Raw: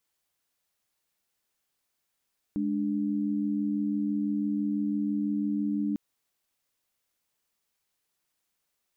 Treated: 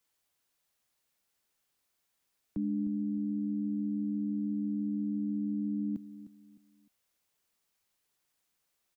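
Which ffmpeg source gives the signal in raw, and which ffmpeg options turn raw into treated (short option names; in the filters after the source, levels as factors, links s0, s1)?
-f lavfi -i "aevalsrc='0.0376*(sin(2*PI*207.65*t)+sin(2*PI*293.66*t))':d=3.4:s=44100"
-filter_complex "[0:a]acrossover=split=140|230[s0][s1][s2];[s2]alimiter=level_in=4.73:limit=0.0631:level=0:latency=1:release=12,volume=0.211[s3];[s0][s1][s3]amix=inputs=3:normalize=0,aecho=1:1:305|610|915:0.211|0.0634|0.019"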